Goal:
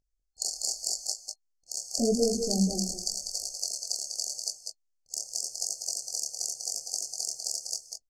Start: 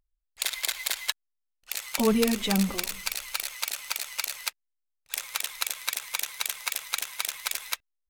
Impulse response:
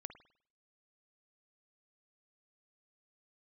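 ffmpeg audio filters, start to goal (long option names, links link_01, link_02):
-filter_complex "[0:a]afftfilt=real='re*(1-between(b*sr/4096,790,4300))':imag='im*(1-between(b*sr/4096,790,4300))':win_size=4096:overlap=0.75,flanger=delay=19.5:depth=7.9:speed=0.86,lowpass=frequency=6800:width_type=q:width=2.3,asplit=2[link_01][link_02];[link_02]aecho=0:1:196|214:0.501|0.133[link_03];[link_01][link_03]amix=inputs=2:normalize=0,volume=1dB"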